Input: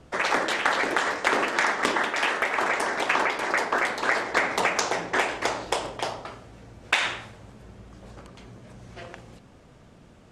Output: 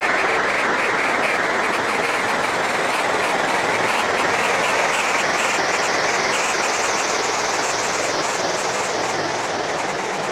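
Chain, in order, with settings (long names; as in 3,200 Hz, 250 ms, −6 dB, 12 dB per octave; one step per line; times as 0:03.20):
extreme stretch with random phases 17×, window 0.50 s, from 0:04.39
granular cloud, pitch spread up and down by 3 semitones
level +6.5 dB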